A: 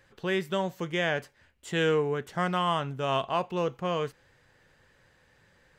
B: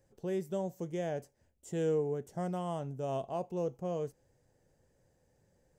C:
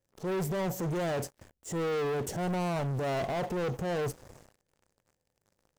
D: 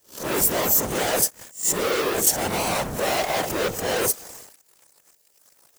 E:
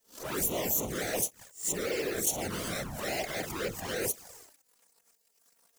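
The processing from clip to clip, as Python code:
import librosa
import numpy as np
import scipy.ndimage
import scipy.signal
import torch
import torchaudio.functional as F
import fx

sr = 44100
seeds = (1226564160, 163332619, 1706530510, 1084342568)

y1 = fx.band_shelf(x, sr, hz=2100.0, db=-16.0, octaves=2.4)
y1 = y1 * 10.0 ** (-5.0 / 20.0)
y2 = fx.rider(y1, sr, range_db=3, speed_s=0.5)
y2 = fx.transient(y2, sr, attack_db=-9, sustain_db=6)
y2 = fx.leveller(y2, sr, passes=5)
y2 = y2 * 10.0 ** (-3.5 / 20.0)
y3 = fx.spec_swells(y2, sr, rise_s=0.3)
y3 = fx.riaa(y3, sr, side='recording')
y3 = fx.whisperise(y3, sr, seeds[0])
y3 = y3 * 10.0 ** (9.0 / 20.0)
y4 = fx.env_flanger(y3, sr, rest_ms=4.5, full_db=-18.0)
y4 = y4 * 10.0 ** (-6.5 / 20.0)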